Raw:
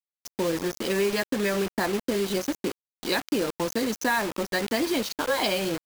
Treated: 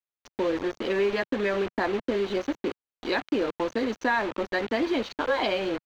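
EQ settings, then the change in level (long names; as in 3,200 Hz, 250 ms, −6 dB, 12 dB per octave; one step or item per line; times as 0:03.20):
high-frequency loss of the air 220 metres
parametric band 170 Hz −12 dB 0.48 octaves
parametric band 5,100 Hz −6.5 dB 0.2 octaves
+1.5 dB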